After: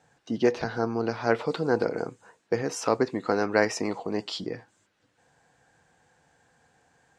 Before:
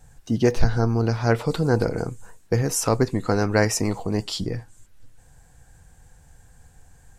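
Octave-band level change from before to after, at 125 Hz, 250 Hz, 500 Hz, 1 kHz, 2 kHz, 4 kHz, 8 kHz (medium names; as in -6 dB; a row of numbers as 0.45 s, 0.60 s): -15.0 dB, -5.0 dB, -2.0 dB, -1.5 dB, -1.5 dB, -5.0 dB, -10.5 dB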